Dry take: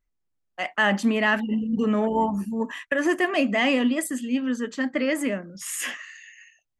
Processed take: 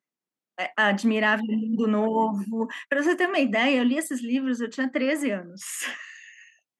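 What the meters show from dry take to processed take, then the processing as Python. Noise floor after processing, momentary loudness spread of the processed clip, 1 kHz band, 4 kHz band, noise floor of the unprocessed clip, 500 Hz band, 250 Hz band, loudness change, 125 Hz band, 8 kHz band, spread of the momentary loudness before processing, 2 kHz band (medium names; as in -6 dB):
under -85 dBFS, 11 LU, 0.0 dB, -0.5 dB, -76 dBFS, 0.0 dB, -0.5 dB, -0.5 dB, no reading, -2.5 dB, 11 LU, -0.5 dB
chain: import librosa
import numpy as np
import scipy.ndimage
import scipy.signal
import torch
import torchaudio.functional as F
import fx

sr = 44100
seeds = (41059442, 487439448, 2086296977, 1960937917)

y = scipy.signal.sosfilt(scipy.signal.butter(4, 170.0, 'highpass', fs=sr, output='sos'), x)
y = fx.high_shelf(y, sr, hz=7100.0, db=-4.5)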